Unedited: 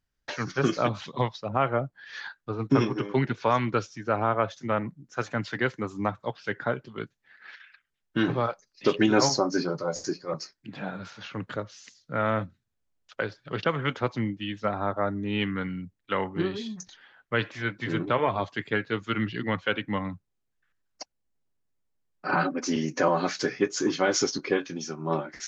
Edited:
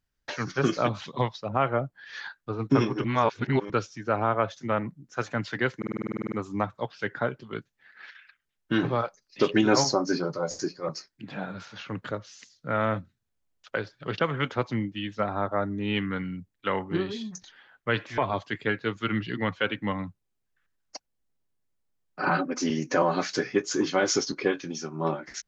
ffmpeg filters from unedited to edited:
-filter_complex "[0:a]asplit=15[s0][s1][s2][s3][s4][s5][s6][s7][s8][s9][s10][s11][s12][s13][s14];[s0]atrim=end=3.042[s15];[s1]atrim=start=3.038:end=3.702,asetpts=PTS-STARTPTS,areverse[s16];[s2]atrim=start=3.698:end=5.822[s17];[s3]atrim=start=5.768:end=5.822[s18];[s4]atrim=start=5.768:end=5.822[s19];[s5]atrim=start=5.768:end=5.822[s20];[s6]atrim=start=5.768:end=5.822[s21];[s7]atrim=start=5.768:end=5.822[s22];[s8]atrim=start=5.768:end=5.822[s23];[s9]atrim=start=5.768:end=5.822[s24];[s10]atrim=start=5.768:end=5.822[s25];[s11]atrim=start=5.768:end=5.822[s26];[s12]atrim=start=5.768:end=5.822[s27];[s13]atrim=start=5.768:end=17.632[s28];[s14]atrim=start=18.238[s29];[s15][s16]acrossfade=d=0.004:c1=hsin:c2=hsin[s30];[s30][s17]acrossfade=d=0.004:c1=hsin:c2=hsin[s31];[s31][s18]acrossfade=d=0.004:c1=hsin:c2=hsin[s32];[s32][s19]acrossfade=d=0.004:c1=hsin:c2=hsin[s33];[s33][s20]acrossfade=d=0.004:c1=hsin:c2=hsin[s34];[s34][s21]acrossfade=d=0.004:c1=hsin:c2=hsin[s35];[s35][s22]acrossfade=d=0.004:c1=hsin:c2=hsin[s36];[s36][s23]acrossfade=d=0.004:c1=hsin:c2=hsin[s37];[s37][s24]acrossfade=d=0.004:c1=hsin:c2=hsin[s38];[s38][s25]acrossfade=d=0.004:c1=hsin:c2=hsin[s39];[s39][s26]acrossfade=d=0.004:c1=hsin:c2=hsin[s40];[s40][s27]acrossfade=d=0.004:c1=hsin:c2=hsin[s41];[s41][s28]acrossfade=d=0.004:c1=hsin:c2=hsin[s42];[s42][s29]acrossfade=d=0.004:c1=hsin:c2=hsin"

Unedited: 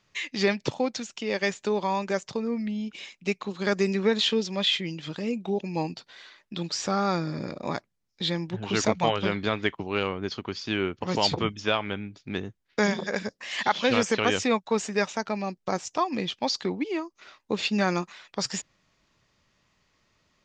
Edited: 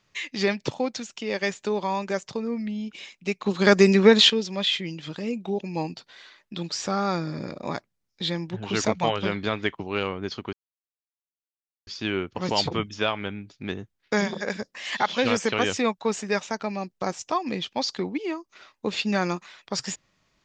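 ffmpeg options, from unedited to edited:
-filter_complex "[0:a]asplit=4[s0][s1][s2][s3];[s0]atrim=end=3.462[s4];[s1]atrim=start=3.458:end=4.302,asetpts=PTS-STARTPTS,volume=2.66[s5];[s2]atrim=start=4.298:end=10.53,asetpts=PTS-STARTPTS,afade=t=out:st=6.228:d=0.004:c=hsin,apad=pad_dur=1.34[s6];[s3]atrim=start=10.53,asetpts=PTS-STARTPTS,afade=t=in:d=0.004:c=hsin[s7];[s4][s5]acrossfade=d=0.004:c1=hsin:c2=hsin[s8];[s6][s7]concat=n=2:v=0:a=1[s9];[s8][s9]acrossfade=d=0.004:c1=hsin:c2=hsin"

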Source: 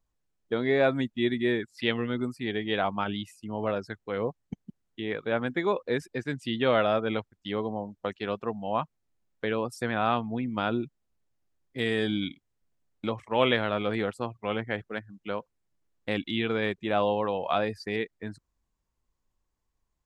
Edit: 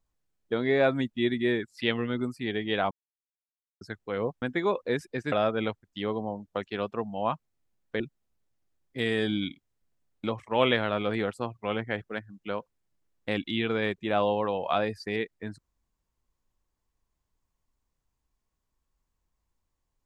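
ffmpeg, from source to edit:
-filter_complex "[0:a]asplit=6[s0][s1][s2][s3][s4][s5];[s0]atrim=end=2.91,asetpts=PTS-STARTPTS,afade=t=out:st=2.906:d=0.004:c=hsin[s6];[s1]atrim=start=2.91:end=3.81,asetpts=PTS-STARTPTS,volume=0[s7];[s2]atrim=start=3.81:end=4.422,asetpts=PTS-STARTPTS,afade=t=in:d=0.004:c=hsin[s8];[s3]atrim=start=5.428:end=6.332[s9];[s4]atrim=start=6.808:end=9.492[s10];[s5]atrim=start=10.798[s11];[s6][s7][s8]concat=n=3:v=0:a=1[s12];[s12][s9]acrossfade=d=0.004:c1=hsin:c2=hsin[s13];[s13][s10]acrossfade=d=0.004:c1=hsin:c2=hsin[s14];[s14][s11]acrossfade=d=0.004:c1=hsin:c2=hsin"

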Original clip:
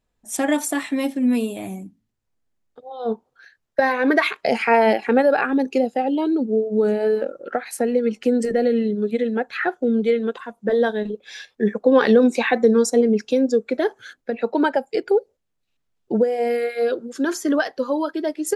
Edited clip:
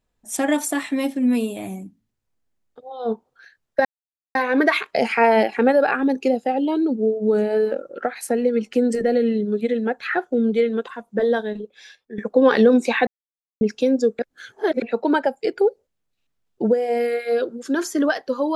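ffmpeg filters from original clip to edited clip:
-filter_complex "[0:a]asplit=7[s0][s1][s2][s3][s4][s5][s6];[s0]atrim=end=3.85,asetpts=PTS-STARTPTS,afade=t=out:st=3.846:d=0.004:c=hsin,apad=pad_dur=0.5[s7];[s1]atrim=start=3.85:end=11.68,asetpts=PTS-STARTPTS,afade=t=in:d=0.004:c=hsin,afade=t=out:st=6.82:d=1.01:silence=0.149624[s8];[s2]atrim=start=11.68:end=12.57,asetpts=PTS-STARTPTS,afade=t=in:d=0.004:c=hsin:silence=0.149624,afade=t=out:st=0.886:d=0.004:c=hsin[s9];[s3]atrim=start=12.57:end=13.11,asetpts=PTS-STARTPTS,volume=0[s10];[s4]atrim=start=13.11:end=13.692,asetpts=PTS-STARTPTS,afade=t=in:d=0.004:c=hsin[s11];[s5]atrim=start=13.688:end=14.322,asetpts=PTS-STARTPTS,areverse[s12];[s6]atrim=start=14.318[s13];[s7][s8][s9][s10][s11]concat=n=5:v=0:a=1[s14];[s14][s12]acrossfade=d=0.004:c1=hsin:c2=hsin[s15];[s15][s13]acrossfade=d=0.004:c1=hsin:c2=hsin"

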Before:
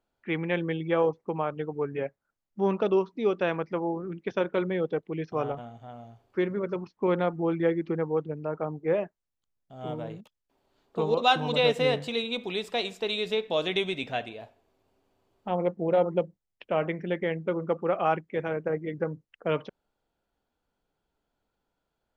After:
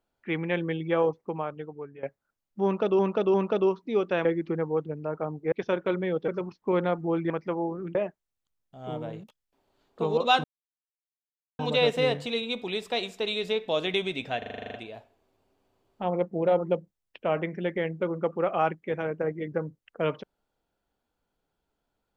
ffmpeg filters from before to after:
-filter_complex "[0:a]asplit=19[s0][s1][s2][s3][s4][s5][s6][s7][s8][s9][s10][s11][s12][s13][s14][s15][s16][s17][s18];[s0]atrim=end=2.03,asetpts=PTS-STARTPTS,afade=t=out:st=1.15:d=0.88:silence=0.141254[s19];[s1]atrim=start=2.03:end=2.992,asetpts=PTS-STARTPTS,afade=t=in:d=0.004:c=hsin:silence=0.141254[s20];[s2]atrim=start=2.638:end=2.992[s21];[s3]atrim=start=2.638:end=3.552[s22];[s4]atrim=start=7.648:end=8.922[s23];[s5]atrim=start=4.198:end=4.962[s24];[s6]atrim=start=6.628:end=7.652[s25];[s7]atrim=start=3.548:end=4.202[s26];[s8]atrim=start=8.918:end=11.41,asetpts=PTS-STARTPTS,afade=t=out:st=2.488:d=0.004:c=hsin,apad=pad_dur=1.15[s27];[s9]atrim=start=11.41:end=14.242,asetpts=PTS-STARTPTS,afade=t=in:d=0.004:c=hsin[s28];[s10]atrim=start=14.198:end=14.242[s29];[s11]atrim=start=14.198:end=14.242[s30];[s12]atrim=start=14.198:end=14.242[s31];[s13]atrim=start=14.198:end=14.242[s32];[s14]atrim=start=14.198:end=14.242[s33];[s15]atrim=start=14.198:end=14.242[s34];[s16]atrim=start=14.198:end=14.242[s35];[s17]atrim=start=14.198:end=14.242[s36];[s18]atrim=start=14.198[s37];[s19][s20]concat=n=2:v=0:a=1[s38];[s38][s21]acrossfade=d=0.004:c1=hsin:c2=hsin[s39];[s39][s22]acrossfade=d=0.004:c1=hsin:c2=hsin[s40];[s40][s23]acrossfade=d=0.004:c1=hsin:c2=hsin[s41];[s41][s24]acrossfade=d=0.004:c1=hsin:c2=hsin[s42];[s42][s25]acrossfade=d=0.004:c1=hsin:c2=hsin[s43];[s43][s26]acrossfade=d=0.004:c1=hsin:c2=hsin[s44];[s27][s28]concat=n=2:v=0:a=1[s45];[s44][s45]acrossfade=d=0.004:c1=hsin:c2=hsin[s46];[s46][s29]acrossfade=d=0.004:c1=hsin:c2=hsin[s47];[s47][s30]acrossfade=d=0.004:c1=hsin:c2=hsin[s48];[s48][s31]acrossfade=d=0.004:c1=hsin:c2=hsin[s49];[s49][s32]acrossfade=d=0.004:c1=hsin:c2=hsin[s50];[s50][s33]acrossfade=d=0.004:c1=hsin:c2=hsin[s51];[s51][s34]acrossfade=d=0.004:c1=hsin:c2=hsin[s52];[s52][s35]acrossfade=d=0.004:c1=hsin:c2=hsin[s53];[s53][s36]acrossfade=d=0.004:c1=hsin:c2=hsin[s54];[s54][s37]acrossfade=d=0.004:c1=hsin:c2=hsin"

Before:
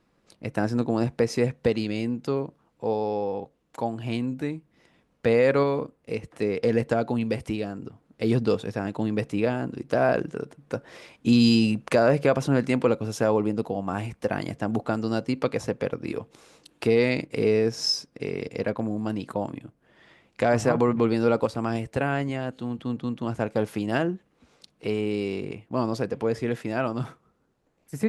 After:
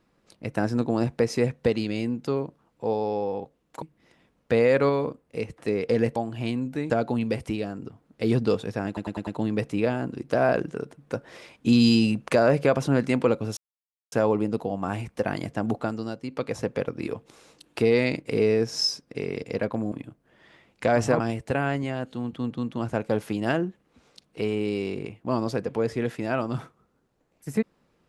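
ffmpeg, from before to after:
-filter_complex "[0:a]asplit=13[s0][s1][s2][s3][s4][s5][s6][s7][s8][s9][s10][s11][s12];[s0]atrim=end=3.822[s13];[s1]atrim=start=4.558:end=6.902[s14];[s2]atrim=start=3.818:end=4.562[s15];[s3]atrim=start=6.898:end=8.972[s16];[s4]atrim=start=8.868:end=8.972[s17];[s5]atrim=start=8.868:end=8.972[s18];[s6]atrim=start=8.868:end=8.972[s19];[s7]atrim=start=8.868:end=13.17,asetpts=PTS-STARTPTS,afade=t=out:st=4.298:d=0.004:c=hsin,apad=pad_dur=0.55[s20];[s8]atrim=start=13.17:end=15.21,asetpts=PTS-STARTPTS,afade=t=in:d=0.004:c=hsin,afade=t=out:st=1.6:d=0.44:silence=0.375837[s21];[s9]atrim=start=15.21:end=15.29,asetpts=PTS-STARTPTS,volume=0.376[s22];[s10]atrim=start=15.29:end=18.972,asetpts=PTS-STARTPTS,afade=t=in:d=0.44:silence=0.375837[s23];[s11]atrim=start=19.488:end=20.772[s24];[s12]atrim=start=21.658[s25];[s13][s14]acrossfade=d=0.004:c1=hsin:c2=hsin[s26];[s26][s15]acrossfade=d=0.004:c1=hsin:c2=hsin[s27];[s27][s16]acrossfade=d=0.004:c1=hsin:c2=hsin[s28];[s28][s17]acrossfade=d=0.004:c1=hsin:c2=hsin[s29];[s29][s18]acrossfade=d=0.004:c1=hsin:c2=hsin[s30];[s30][s19]acrossfade=d=0.004:c1=hsin:c2=hsin[s31];[s20][s21][s22][s23]concat=n=4:v=0:a=1[s32];[s31][s32]acrossfade=d=0.004:c1=hsin:c2=hsin[s33];[s33][s24]acrossfade=d=0.004:c1=hsin:c2=hsin[s34];[s34][s25]acrossfade=d=0.004:c1=hsin:c2=hsin"

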